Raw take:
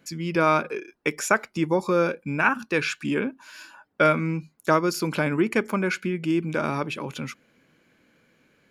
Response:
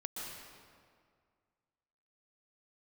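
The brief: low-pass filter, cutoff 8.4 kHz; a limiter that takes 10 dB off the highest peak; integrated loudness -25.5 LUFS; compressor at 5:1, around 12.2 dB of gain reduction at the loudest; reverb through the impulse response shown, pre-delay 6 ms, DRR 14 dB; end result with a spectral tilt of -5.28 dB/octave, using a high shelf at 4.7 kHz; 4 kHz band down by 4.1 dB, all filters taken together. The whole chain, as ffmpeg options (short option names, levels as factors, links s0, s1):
-filter_complex "[0:a]lowpass=8400,equalizer=f=4000:t=o:g=-7.5,highshelf=f=4700:g=3.5,acompressor=threshold=0.0355:ratio=5,alimiter=level_in=1.06:limit=0.0631:level=0:latency=1,volume=0.944,asplit=2[s0][s1];[1:a]atrim=start_sample=2205,adelay=6[s2];[s1][s2]afir=irnorm=-1:irlink=0,volume=0.2[s3];[s0][s3]amix=inputs=2:normalize=0,volume=3.16"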